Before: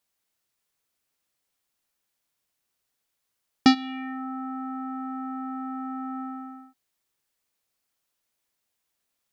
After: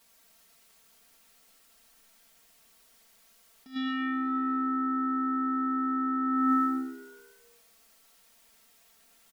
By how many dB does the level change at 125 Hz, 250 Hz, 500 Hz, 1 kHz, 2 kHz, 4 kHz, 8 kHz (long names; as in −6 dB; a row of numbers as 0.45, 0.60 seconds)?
below −10 dB, 0.0 dB, +1.0 dB, +3.5 dB, −2.0 dB, −11.5 dB, can't be measured